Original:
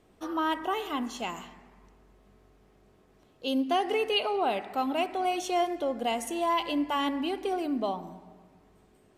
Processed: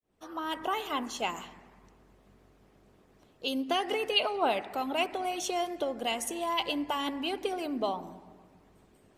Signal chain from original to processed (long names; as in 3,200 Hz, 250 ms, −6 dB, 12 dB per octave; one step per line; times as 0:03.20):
fade in at the beginning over 0.60 s
harmonic and percussive parts rebalanced harmonic −9 dB
level +4 dB